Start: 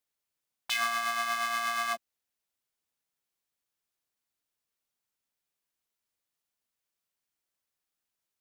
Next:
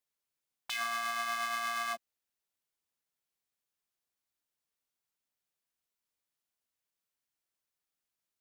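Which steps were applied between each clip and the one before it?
peak limiter -19 dBFS, peak gain reduction 5.5 dB; trim -3 dB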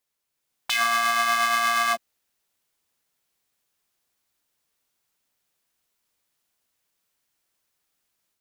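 level rider gain up to 5.5 dB; trim +7 dB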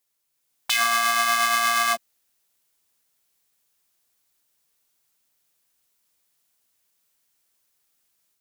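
treble shelf 4.9 kHz +7 dB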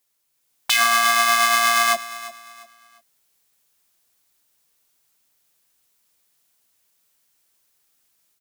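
feedback delay 349 ms, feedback 32%, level -16 dB; trim +4 dB

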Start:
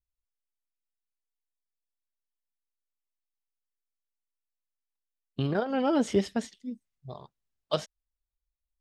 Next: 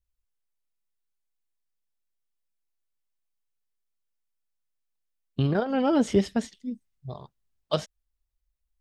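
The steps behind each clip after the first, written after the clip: bass shelf 160 Hz +7.5 dB; trim +1.5 dB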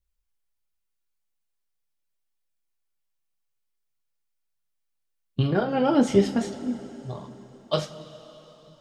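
two-slope reverb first 0.23 s, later 4.2 s, from -20 dB, DRR 2 dB; phaser 1.5 Hz, delay 3.7 ms, feedback 22%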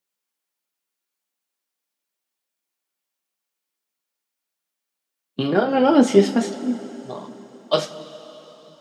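high-pass 200 Hz 24 dB/octave; trim +6 dB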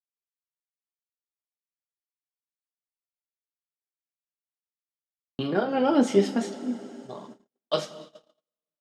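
gate -37 dBFS, range -44 dB; trim -6.5 dB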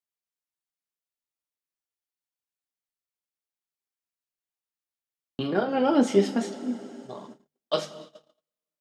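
hum notches 50/100/150 Hz

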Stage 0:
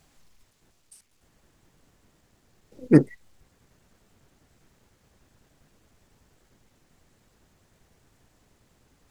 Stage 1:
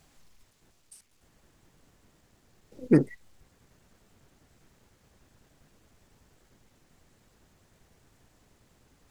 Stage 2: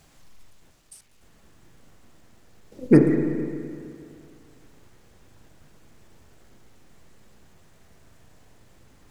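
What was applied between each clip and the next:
peak limiter -9 dBFS, peak gain reduction 7 dB
spring tank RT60 2.3 s, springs 33/42 ms, chirp 30 ms, DRR 4 dB; trim +5 dB

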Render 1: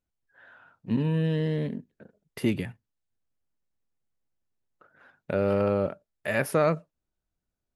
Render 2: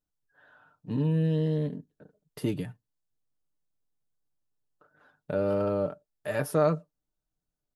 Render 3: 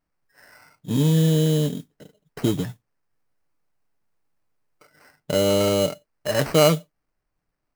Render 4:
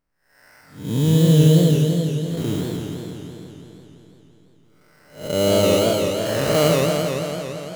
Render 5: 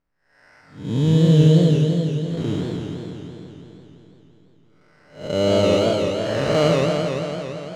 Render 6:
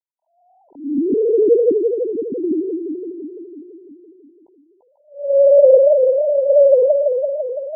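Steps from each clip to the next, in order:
peaking EQ 2.2 kHz -10 dB 0.69 oct; comb 6.7 ms, depth 51%; trim -3 dB
sample-rate reducer 3.5 kHz, jitter 0%; modulation noise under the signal 22 dB; trim +7.5 dB
spectral blur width 218 ms; modulated delay 168 ms, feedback 73%, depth 198 cents, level -3.5 dB; trim +2.5 dB
distance through air 100 m
formants replaced by sine waves; brick-wall FIR low-pass 1 kHz; trim +4 dB

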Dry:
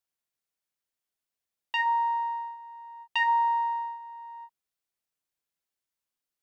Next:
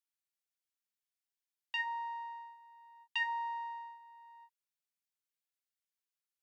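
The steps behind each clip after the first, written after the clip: high-pass 1.4 kHz 12 dB/octave; trim -6 dB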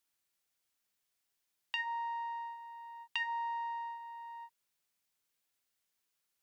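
compression 2.5:1, threshold -49 dBFS, peak gain reduction 12.5 dB; trim +9.5 dB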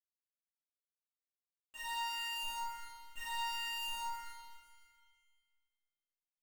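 Schmitt trigger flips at -40 dBFS; chord resonator G#3 sus4, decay 0.28 s; pitch-shifted reverb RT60 1.6 s, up +7 st, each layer -8 dB, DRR -10.5 dB; trim +6 dB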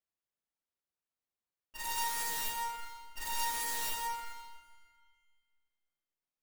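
tracing distortion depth 0.46 ms; tape noise reduction on one side only decoder only; trim +4.5 dB

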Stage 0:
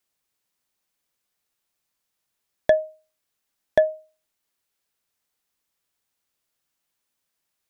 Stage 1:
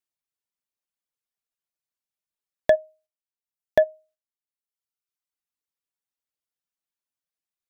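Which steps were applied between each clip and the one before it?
gate -53 dBFS, range -12 dB; reverb removal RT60 1.2 s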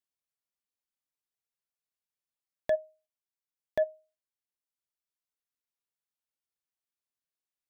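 peak limiter -15 dBFS, peak gain reduction 9 dB; trim -4.5 dB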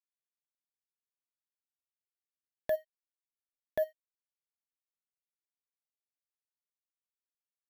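sample-and-hold 3×; crossover distortion -51 dBFS; trim -3 dB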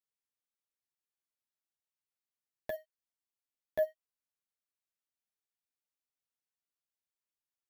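flange 0.39 Hz, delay 8.3 ms, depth 4.7 ms, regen +8%; trim +1 dB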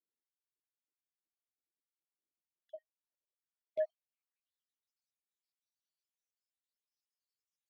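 random holes in the spectrogram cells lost 70%; band-pass sweep 320 Hz -> 5.1 kHz, 2.80–4.93 s; trim +8 dB

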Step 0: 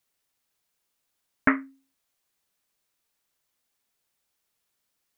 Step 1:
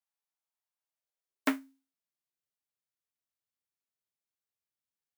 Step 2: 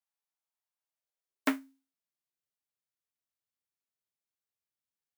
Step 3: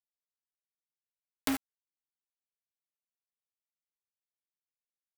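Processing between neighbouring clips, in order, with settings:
formants flattened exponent 0.3; high-pass sweep 810 Hz -> 94 Hz, 0.75–2.53 s; upward expansion 1.5:1, over -34 dBFS; trim -9 dB
no audible change
companded quantiser 2-bit; trim -3 dB

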